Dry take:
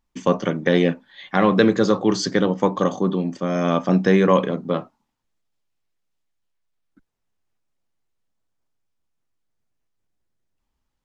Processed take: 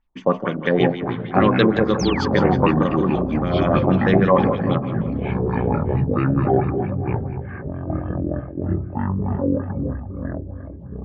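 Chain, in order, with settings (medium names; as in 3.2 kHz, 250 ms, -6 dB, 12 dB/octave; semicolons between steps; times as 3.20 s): bass shelf 63 Hz +9 dB; two-band feedback delay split 310 Hz, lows 271 ms, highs 177 ms, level -10 dB; LFO low-pass sine 6.4 Hz 680–3500 Hz; ever faster or slower copies 415 ms, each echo -6 st, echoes 3; painted sound fall, 1.99–2.35 s, 570–6800 Hz -28 dBFS; trim -3 dB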